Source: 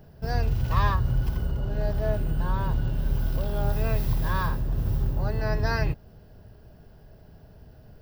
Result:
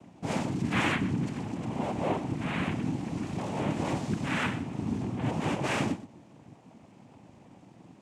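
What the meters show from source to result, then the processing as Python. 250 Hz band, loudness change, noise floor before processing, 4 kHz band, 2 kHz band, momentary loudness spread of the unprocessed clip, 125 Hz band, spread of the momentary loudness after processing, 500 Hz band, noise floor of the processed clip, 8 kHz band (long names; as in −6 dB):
+5.0 dB, −3.5 dB, −52 dBFS, +3.0 dB, +1.5 dB, 5 LU, −7.5 dB, 6 LU, −2.5 dB, −56 dBFS, +6.0 dB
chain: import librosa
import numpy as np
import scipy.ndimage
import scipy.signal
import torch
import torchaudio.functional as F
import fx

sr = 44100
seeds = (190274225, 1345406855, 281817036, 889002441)

p1 = fx.noise_vocoder(x, sr, seeds[0], bands=4)
p2 = 10.0 ** (-30.0 / 20.0) * np.tanh(p1 / 10.0 ** (-30.0 / 20.0))
p3 = p1 + F.gain(torch.from_numpy(p2), -8.5).numpy()
p4 = p3 + 10.0 ** (-15.0 / 20.0) * np.pad(p3, (int(123 * sr / 1000.0), 0))[:len(p3)]
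y = F.gain(torch.from_numpy(p4), -2.5).numpy()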